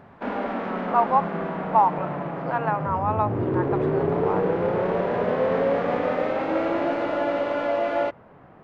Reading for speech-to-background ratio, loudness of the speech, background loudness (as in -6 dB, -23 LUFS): -0.5 dB, -26.0 LUFS, -25.5 LUFS